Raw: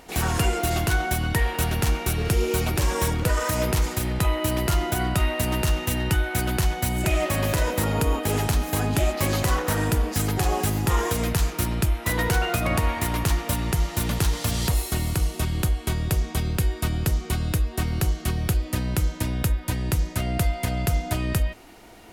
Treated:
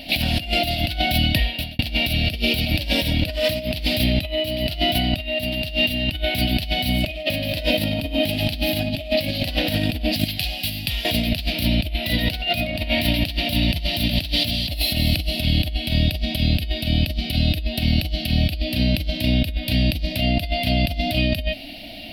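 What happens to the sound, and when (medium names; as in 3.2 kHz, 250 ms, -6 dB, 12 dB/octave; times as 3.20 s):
1.00–1.79 s: fade out
10.24–11.05 s: amplifier tone stack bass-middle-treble 5-5-5
whole clip: FFT filter 160 Hz 0 dB, 280 Hz +7 dB, 420 Hz -22 dB, 610 Hz +8 dB, 1.1 kHz -26 dB, 2.7 kHz +12 dB, 4.6 kHz +11 dB, 6.7 kHz -20 dB, 12 kHz 0 dB; compressor with a negative ratio -25 dBFS, ratio -0.5; trim +4.5 dB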